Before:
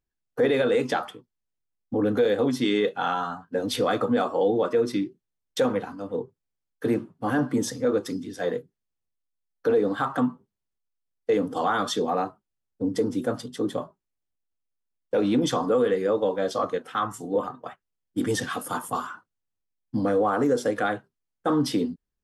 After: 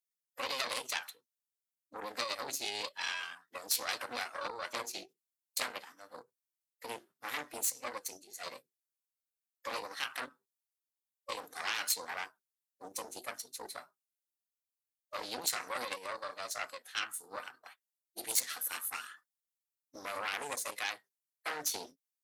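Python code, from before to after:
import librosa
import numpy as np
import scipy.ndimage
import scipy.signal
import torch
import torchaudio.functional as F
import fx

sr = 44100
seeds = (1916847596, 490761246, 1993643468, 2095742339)

y = fx.formant_shift(x, sr, semitones=3)
y = fx.cheby_harmonics(y, sr, harmonics=(4,), levels_db=(-7,), full_scale_db=-10.0)
y = np.diff(y, prepend=0.0)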